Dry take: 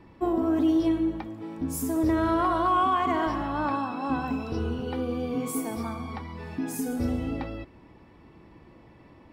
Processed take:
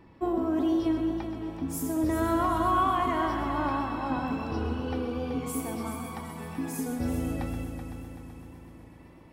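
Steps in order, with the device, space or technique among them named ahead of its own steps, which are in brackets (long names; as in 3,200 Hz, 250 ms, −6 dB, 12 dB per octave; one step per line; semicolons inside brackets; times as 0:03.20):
multi-head tape echo (echo machine with several playback heads 127 ms, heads first and third, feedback 66%, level −10 dB; tape wow and flutter 21 cents)
level −2.5 dB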